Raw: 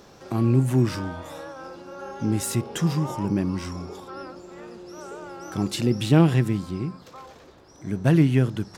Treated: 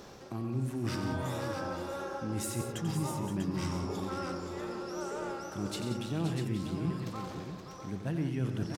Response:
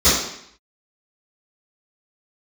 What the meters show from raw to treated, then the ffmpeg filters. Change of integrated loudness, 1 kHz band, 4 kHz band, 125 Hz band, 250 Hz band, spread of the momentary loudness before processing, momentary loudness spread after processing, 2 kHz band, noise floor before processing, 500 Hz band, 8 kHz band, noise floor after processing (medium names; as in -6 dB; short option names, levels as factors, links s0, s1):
-12.0 dB, -5.0 dB, -7.5 dB, -11.5 dB, -10.5 dB, 21 LU, 6 LU, -7.5 dB, -50 dBFS, -8.0 dB, -7.0 dB, -46 dBFS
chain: -af "areverse,acompressor=threshold=0.0224:ratio=5,areverse,aecho=1:1:91|133|178|524|644|827:0.355|0.237|0.266|0.335|0.422|0.133"